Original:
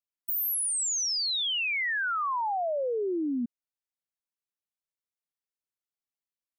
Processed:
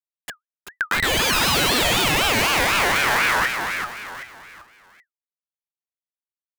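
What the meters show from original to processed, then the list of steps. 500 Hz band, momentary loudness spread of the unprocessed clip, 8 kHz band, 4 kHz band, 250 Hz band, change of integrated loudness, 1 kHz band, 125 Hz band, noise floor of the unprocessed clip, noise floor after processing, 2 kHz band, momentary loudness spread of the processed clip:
+6.0 dB, 5 LU, +3.5 dB, +9.5 dB, +5.0 dB, +9.0 dB, +10.0 dB, n/a, under -85 dBFS, under -85 dBFS, +13.0 dB, 13 LU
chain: cycle switcher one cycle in 3, muted; tilt +2.5 dB/oct; treble ducked by the level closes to 1500 Hz, closed at -21 dBFS; low shelf 180 Hz -4.5 dB; in parallel at -4 dB: sample-and-hold 11×; on the sum: Schmitt trigger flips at -39 dBFS; AGC gain up to 13 dB; on a send: feedback echo 0.386 s, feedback 37%, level -6 dB; on the sum: ring modulator with a swept carrier 1600 Hz, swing 25%, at 4 Hz; gain +3.5 dB

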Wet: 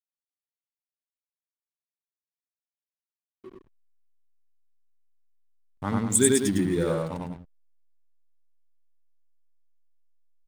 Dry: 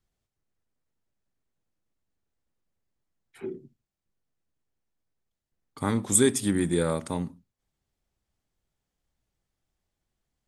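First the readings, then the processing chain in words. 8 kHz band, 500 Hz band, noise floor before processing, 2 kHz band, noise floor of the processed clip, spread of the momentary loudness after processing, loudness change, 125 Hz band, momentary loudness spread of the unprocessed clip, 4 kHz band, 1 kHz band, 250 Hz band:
+1.0 dB, +1.0 dB, -85 dBFS, 0.0 dB, under -85 dBFS, 16 LU, +1.5 dB, +0.5 dB, 18 LU, 0.0 dB, 0.0 dB, +1.0 dB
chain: per-bin expansion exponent 1.5; loudspeakers at several distances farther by 32 m -1 dB, 68 m -8 dB; backlash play -34 dBFS

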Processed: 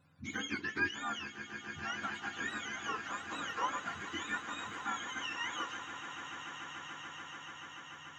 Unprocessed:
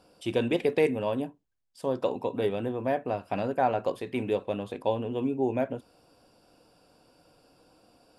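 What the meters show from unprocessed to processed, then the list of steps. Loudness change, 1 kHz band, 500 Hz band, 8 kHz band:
-10.0 dB, -6.0 dB, -23.5 dB, n/a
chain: spectrum mirrored in octaves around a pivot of 870 Hz; swelling echo 0.145 s, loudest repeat 8, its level -15 dB; gain -7.5 dB

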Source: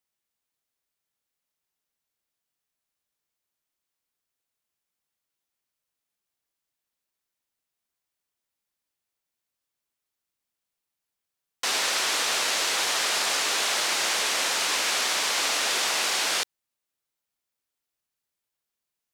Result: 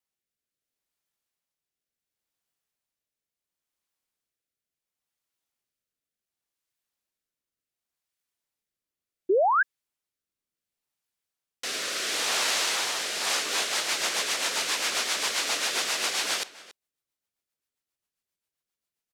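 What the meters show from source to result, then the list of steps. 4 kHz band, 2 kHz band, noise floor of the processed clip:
-2.5 dB, -2.0 dB, under -85 dBFS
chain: outdoor echo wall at 48 m, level -17 dB; painted sound rise, 9.29–9.63, 350–1700 Hz -19 dBFS; rotary speaker horn 0.7 Hz, later 7.5 Hz, at 12.98

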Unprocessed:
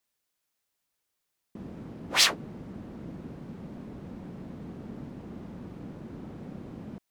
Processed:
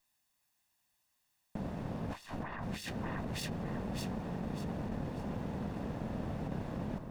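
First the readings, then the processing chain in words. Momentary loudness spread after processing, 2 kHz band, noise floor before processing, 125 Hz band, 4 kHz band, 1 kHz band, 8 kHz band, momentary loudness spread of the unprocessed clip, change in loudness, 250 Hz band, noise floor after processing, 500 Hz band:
3 LU, -11.5 dB, -82 dBFS, +4.0 dB, -18.5 dB, -2.5 dB, -17.5 dB, 20 LU, -7.0 dB, +1.5 dB, -79 dBFS, +1.5 dB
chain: minimum comb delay 1.1 ms; echo with dull and thin repeats by turns 0.297 s, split 1700 Hz, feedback 60%, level -6 dB; negative-ratio compressor -41 dBFS, ratio -1; gain +1 dB

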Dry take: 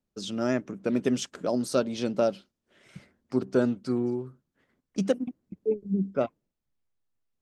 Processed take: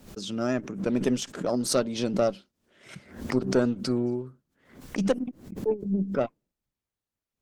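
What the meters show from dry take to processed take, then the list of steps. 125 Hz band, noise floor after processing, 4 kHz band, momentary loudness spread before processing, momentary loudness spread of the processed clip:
+2.5 dB, under -85 dBFS, +3.5 dB, 8 LU, 10 LU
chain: added harmonics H 4 -21 dB, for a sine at -11 dBFS; backwards sustainer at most 110 dB/s

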